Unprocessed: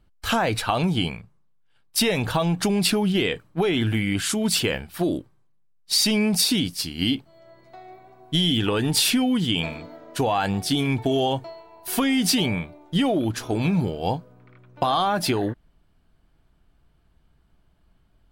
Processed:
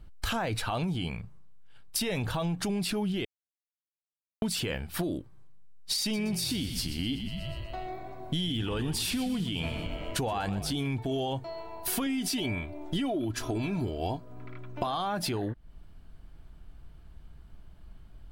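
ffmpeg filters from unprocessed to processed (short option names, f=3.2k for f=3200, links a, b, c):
-filter_complex "[0:a]asettb=1/sr,asplit=3[a][b][c];[a]atrim=end=6.014[d];[b]atrim=start=6.01:end=10.74,asetpts=PTS-STARTPTS,afade=t=in:d=0.004:c=qsin,afade=t=out:st=4.726:d=0.004:c=qsin,asplit=7[e][f][g][h][i][j][k];[f]adelay=122,afreqshift=-44,volume=-13dB[l];[g]adelay=244,afreqshift=-88,volume=-17.7dB[m];[h]adelay=366,afreqshift=-132,volume=-22.5dB[n];[i]adelay=488,afreqshift=-176,volume=-27.2dB[o];[j]adelay=610,afreqshift=-220,volume=-31.9dB[p];[k]adelay=732,afreqshift=-264,volume=-36.7dB[q];[e][l][m][n][o][p][q]amix=inputs=7:normalize=0,atrim=end_sample=208593[r];[c]atrim=start=10.736[s];[d][r]acrossfade=d=0.004:c1=hsin:c2=qsin[t];[t][s]acrossfade=d=0.004:c1=qsin:c2=hsin,asettb=1/sr,asplit=3[u][v][w];[u]atrim=end=12.064[x];[v]atrim=start=12.06:end=14.87,asetpts=PTS-STARTPTS,afade=t=in:d=0.004:c=qsin,afade=t=out:st=2.806:d=0.004:c=qsin,aecho=1:1:3:0.58,atrim=end_sample=123921[y];[w]atrim=start=14.866[z];[x][y]acrossfade=d=0.004:c1=hsin:c2=qsin[aa];[aa][z]acrossfade=d=0.004:c1=qsin:c2=hsin,asplit=3[ab][ac][ad];[ab]atrim=end=3.25,asetpts=PTS-STARTPTS,afade=t=out:st=3.246:d=0.004:c=hsin[ae];[ac]atrim=start=3.25:end=4.42,asetpts=PTS-STARTPTS,volume=0[af];[ad]atrim=start=4.42,asetpts=PTS-STARTPTS,afade=t=in:d=0.004:c=hsin[ag];[ae][af][ag]concat=n=3:v=0:a=1,lowshelf=f=100:g=9.5,alimiter=limit=-14.5dB:level=0:latency=1,acompressor=threshold=-35dB:ratio=5,volume=5dB"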